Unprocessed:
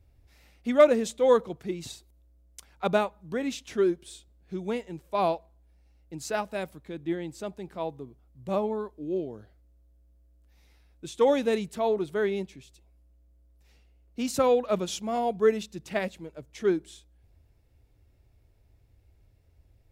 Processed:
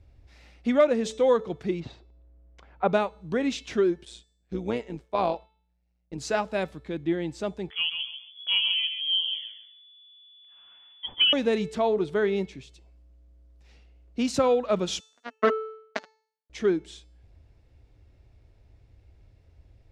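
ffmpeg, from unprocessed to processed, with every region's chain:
-filter_complex "[0:a]asettb=1/sr,asplit=3[s0][s1][s2];[s0]atrim=end=1.804[s3];[s1]atrim=start=1.8:end=2.9,asetpts=PTS-STARTPTS,afade=t=in:d=0.004:c=qsin,afade=t=out:st=1.096:d=0.004:c=qsin,lowpass=1900,equalizer=f=610:w=1:g=3.5[s4];[s2]atrim=start=2.896[s5];[s3][s4]acrossfade=d=0.004:c1=hsin:c2=qsin[s6];[s6][s5]acrossfade=d=0.004:c1=qsin:c2=hsin,asettb=1/sr,asplit=3[s7][s8][s9];[s7]atrim=end=4.054[s10];[s8]atrim=start=4.05:end=6.18,asetpts=PTS-STARTPTS,afade=t=in:d=0.004:c=qsin,afade=t=out:st=2.126:d=0.004:c=qsin,agate=range=0.0224:threshold=0.00282:ratio=3:release=100:detection=peak,tremolo=f=120:d=0.667[s11];[s9]atrim=start=6.176[s12];[s10][s11]acrossfade=d=0.004:c1=hsin:c2=qsin[s13];[s13][s12]acrossfade=d=0.004:c1=qsin:c2=hsin,asettb=1/sr,asplit=3[s14][s15][s16];[s14]atrim=end=7.704[s17];[s15]atrim=start=7.7:end=11.33,asetpts=PTS-STARTPTS,afade=t=in:d=0.004:c=qsin,afade=t=out:st=3.626:d=0.004:c=qsin,lowpass=f=3000:t=q:w=0.5098,lowpass=f=3000:t=q:w=0.6013,lowpass=f=3000:t=q:w=0.9,lowpass=f=3000:t=q:w=2.563,afreqshift=-3500,aecho=1:1:136|272|408:0.422|0.118|0.0331,atrim=end_sample=160083[s18];[s16]atrim=start=11.326[s19];[s17][s18]acrossfade=d=0.004:c1=hsin:c2=qsin[s20];[s20][s19]acrossfade=d=0.004:c1=qsin:c2=hsin,asettb=1/sr,asplit=3[s21][s22][s23];[s21]atrim=end=15.004[s24];[s22]atrim=start=15:end=16.5,asetpts=PTS-STARTPTS,afade=t=in:d=0.004:c=qsin,afade=t=out:st=1.496:d=0.004:c=qsin,aeval=exprs='val(0)+0.000891*(sin(2*PI*60*n/s)+sin(2*PI*2*60*n/s)/2+sin(2*PI*3*60*n/s)/3+sin(2*PI*4*60*n/s)/4+sin(2*PI*5*60*n/s)/5)':c=same,acrusher=bits=2:mix=0:aa=0.5,highpass=240,equalizer=f=250:t=q:w=4:g=7,equalizer=f=630:t=q:w=4:g=7,equalizer=f=1500:t=q:w=4:g=5,equalizer=f=2400:t=q:w=4:g=-5,equalizer=f=3400:t=q:w=4:g=-5,equalizer=f=5000:t=q:w=4:g=-5,lowpass=f=6400:w=0.5412,lowpass=f=6400:w=1.3066[s25];[s23]atrim=start=16.496[s26];[s24][s25]acrossfade=d=0.004:c1=hsin:c2=qsin[s27];[s27][s26]acrossfade=d=0.004:c1=qsin:c2=hsin,lowpass=5800,bandreject=f=438.5:t=h:w=4,bandreject=f=877:t=h:w=4,bandreject=f=1315.5:t=h:w=4,bandreject=f=1754:t=h:w=4,bandreject=f=2192.5:t=h:w=4,bandreject=f=2631:t=h:w=4,bandreject=f=3069.5:t=h:w=4,bandreject=f=3508:t=h:w=4,bandreject=f=3946.5:t=h:w=4,bandreject=f=4385:t=h:w=4,bandreject=f=4823.5:t=h:w=4,bandreject=f=5262:t=h:w=4,bandreject=f=5700.5:t=h:w=4,bandreject=f=6139:t=h:w=4,bandreject=f=6577.5:t=h:w=4,bandreject=f=7016:t=h:w=4,bandreject=f=7454.5:t=h:w=4,bandreject=f=7893:t=h:w=4,bandreject=f=8331.5:t=h:w=4,bandreject=f=8770:t=h:w=4,bandreject=f=9208.5:t=h:w=4,bandreject=f=9647:t=h:w=4,bandreject=f=10085.5:t=h:w=4,bandreject=f=10524:t=h:w=4,bandreject=f=10962.5:t=h:w=4,bandreject=f=11401:t=h:w=4,bandreject=f=11839.5:t=h:w=4,bandreject=f=12278:t=h:w=4,bandreject=f=12716.5:t=h:w=4,bandreject=f=13155:t=h:w=4,bandreject=f=13593.5:t=h:w=4,bandreject=f=14032:t=h:w=4,bandreject=f=14470.5:t=h:w=4,bandreject=f=14909:t=h:w=4,bandreject=f=15347.5:t=h:w=4,acompressor=threshold=0.0398:ratio=2,volume=1.88"

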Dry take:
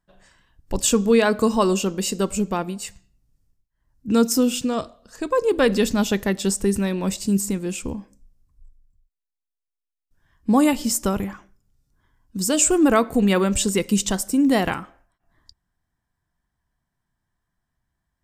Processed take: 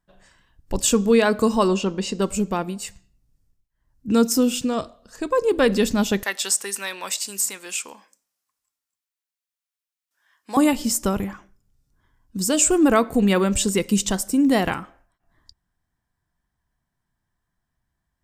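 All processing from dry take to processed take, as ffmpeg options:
-filter_complex "[0:a]asettb=1/sr,asplit=3[s0][s1][s2];[s0]atrim=end=1.684[s3];[s1]atrim=start=1.68:end=2.22,asetpts=PTS-STARTPTS,afade=t=in:d=0.004:c=qsin,afade=t=out:st=0.536:d=0.004:c=qsin,lowpass=5000,equalizer=f=950:w=5.2:g=5[s4];[s2]atrim=start=2.216[s5];[s3][s4]acrossfade=d=0.004:c1=hsin:c2=qsin[s6];[s6][s5]acrossfade=d=0.004:c1=qsin:c2=hsin,asettb=1/sr,asplit=3[s7][s8][s9];[s7]atrim=end=6.234[s10];[s8]atrim=start=6.23:end=10.57,asetpts=PTS-STARTPTS,afade=t=in:d=0.004:c=qsin,afade=t=out:st=4.336:d=0.004:c=qsin,highpass=1100,acontrast=36[s11];[s9]atrim=start=10.566[s12];[s10][s11]acrossfade=d=0.004:c1=hsin:c2=qsin[s13];[s13][s12]acrossfade=d=0.004:c1=qsin:c2=hsin"

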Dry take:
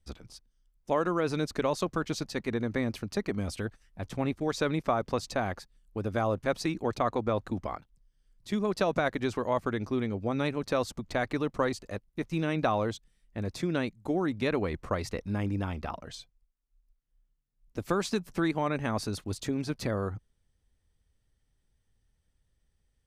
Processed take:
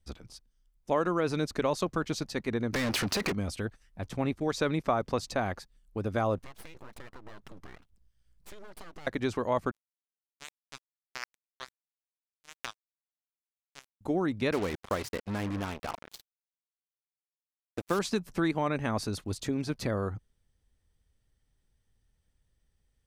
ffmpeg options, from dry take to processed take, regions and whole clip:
-filter_complex "[0:a]asettb=1/sr,asplit=3[s0][s1][s2];[s0]atrim=end=2.734[s3];[s1]atrim=start=2.73:end=3.33,asetpts=PTS-STARTPTS,afade=t=in:d=0.004:c=qsin,afade=t=out:st=0.596:d=0.004:c=qsin,asplit=2[s4][s5];[s5]highpass=f=720:p=1,volume=50.1,asoftclip=type=tanh:threshold=0.133[s6];[s4][s6]amix=inputs=2:normalize=0,lowpass=f=7000:p=1,volume=0.501,acompressor=threshold=0.0447:ratio=6:attack=3.2:release=140:knee=1:detection=peak[s7];[s2]atrim=start=3.326[s8];[s3][s7]acrossfade=d=0.004:c1=hsin:c2=qsin[s9];[s9][s8]acrossfade=d=0.004:c1=qsin:c2=hsin,asettb=1/sr,asplit=3[s10][s11][s12];[s10]atrim=end=6.384[s13];[s11]atrim=start=6.38:end=9.07,asetpts=PTS-STARTPTS,afade=t=in:d=0.004:c=qsin,afade=t=out:st=2.686:d=0.004:c=qsin,equalizer=f=300:t=o:w=0.75:g=-11,acompressor=threshold=0.00891:ratio=10:attack=3.2:release=140:knee=1:detection=peak,aeval=exprs='abs(val(0))':c=same[s14];[s12]atrim=start=9.066[s15];[s13][s14]acrossfade=d=0.004:c1=hsin:c2=qsin[s16];[s16][s15]acrossfade=d=0.004:c1=qsin:c2=hsin,asettb=1/sr,asplit=3[s17][s18][s19];[s17]atrim=end=9.714[s20];[s18]atrim=start=9.71:end=14.01,asetpts=PTS-STARTPTS,afade=t=in:d=0.004:c=qsin,afade=t=out:st=4.296:d=0.004:c=qsin,asuperpass=centerf=2000:order=8:qfactor=0.74,acrusher=bits=3:mix=0:aa=0.5[s21];[s19]atrim=start=14.006[s22];[s20][s21]acrossfade=d=0.004:c1=hsin:c2=qsin[s23];[s23][s22]acrossfade=d=0.004:c1=qsin:c2=hsin,asettb=1/sr,asplit=3[s24][s25][s26];[s24]atrim=end=14.524[s27];[s25]atrim=start=14.52:end=17.99,asetpts=PTS-STARTPTS,afade=t=in:d=0.004:c=qsin,afade=t=out:st=3.466:d=0.004:c=qsin,lowshelf=f=110:g=-9.5,acrusher=bits=5:mix=0:aa=0.5[s28];[s26]atrim=start=17.986[s29];[s27][s28]acrossfade=d=0.004:c1=hsin:c2=qsin[s30];[s30][s29]acrossfade=d=0.004:c1=qsin:c2=hsin"

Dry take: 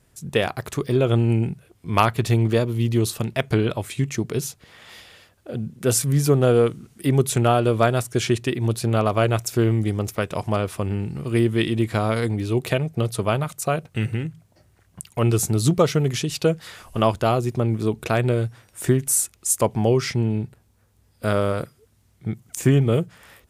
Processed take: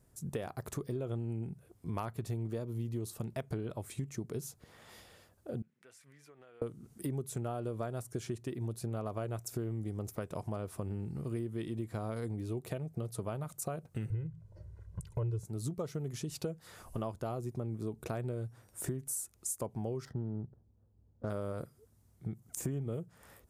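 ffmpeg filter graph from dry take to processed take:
-filter_complex "[0:a]asettb=1/sr,asplit=3[s0][s1][s2];[s0]atrim=end=5.624[s3];[s1]atrim=start=5.62:end=6.62,asetpts=PTS-STARTPTS,afade=t=in:d=0.004:c=qsin,afade=t=out:st=0.996:d=0.004:c=qsin,bandpass=f=2100:t=q:w=2.4,acompressor=threshold=0.00355:ratio=4:attack=3.2:release=140:knee=1:detection=peak[s4];[s2]atrim=start=6.616[s5];[s3][s4]acrossfade=d=0.004:c1=hsin:c2=qsin[s6];[s6][s5]acrossfade=d=0.004:c1=qsin:c2=hsin,asettb=1/sr,asplit=3[s7][s8][s9];[s7]atrim=end=14.104[s10];[s8]atrim=start=14.1:end=15.45,asetpts=PTS-STARTPTS,afade=t=in:d=0.004:c=qsin,afade=t=out:st=1.346:d=0.004:c=qsin,aemphasis=mode=reproduction:type=bsi,aecho=1:1:2:0.87,atrim=end_sample=59535[s11];[s9]atrim=start=15.446[s12];[s10][s11]acrossfade=d=0.004:c1=hsin:c2=qsin[s13];[s13][s12]acrossfade=d=0.004:c1=qsin:c2=hsin,asettb=1/sr,asplit=3[s14][s15][s16];[s14]atrim=end=20.054[s17];[s15]atrim=start=20.05:end=21.3,asetpts=PTS-STARTPTS,afade=t=in:d=0.004:c=qsin,afade=t=out:st=1.246:d=0.004:c=qsin,asuperstop=centerf=2400:order=20:qfactor=2.4,adynamicsmooth=sensitivity=2.5:basefreq=670[s18];[s16]atrim=start=21.296[s19];[s17][s18]acrossfade=d=0.004:c1=hsin:c2=qsin[s20];[s20][s19]acrossfade=d=0.004:c1=qsin:c2=hsin,equalizer=f=2800:t=o:w=1.9:g=-10.5,acompressor=threshold=0.0316:ratio=5,volume=0.531"

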